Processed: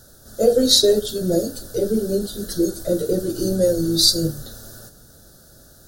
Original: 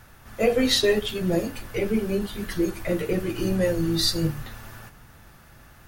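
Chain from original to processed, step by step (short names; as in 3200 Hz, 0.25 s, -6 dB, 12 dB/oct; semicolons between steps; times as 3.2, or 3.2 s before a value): EQ curve 110 Hz 0 dB, 590 Hz +8 dB, 1000 Hz -14 dB, 1500 Hz +1 dB, 2300 Hz -27 dB, 3900 Hz +9 dB, 8900 Hz +12 dB, 14000 Hz +9 dB; gain -1 dB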